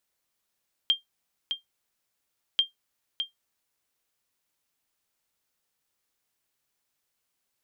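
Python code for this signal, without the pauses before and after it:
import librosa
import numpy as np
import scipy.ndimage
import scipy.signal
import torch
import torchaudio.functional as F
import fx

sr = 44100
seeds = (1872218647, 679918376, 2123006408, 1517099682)

y = fx.sonar_ping(sr, hz=3190.0, decay_s=0.14, every_s=1.69, pings=2, echo_s=0.61, echo_db=-7.5, level_db=-13.5)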